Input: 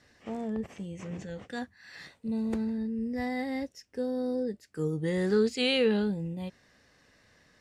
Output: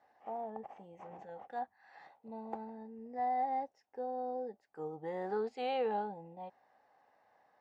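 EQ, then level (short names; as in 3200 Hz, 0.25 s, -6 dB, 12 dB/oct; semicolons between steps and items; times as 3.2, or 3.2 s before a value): band-pass 800 Hz, Q 8.3; +11.0 dB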